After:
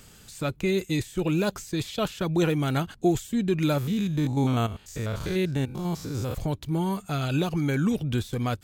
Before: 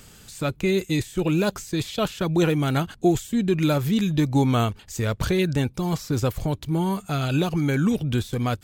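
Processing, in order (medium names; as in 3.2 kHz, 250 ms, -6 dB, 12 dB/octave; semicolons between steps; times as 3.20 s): 3.78–6.35 s: spectrogram pixelated in time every 100 ms; trim -3 dB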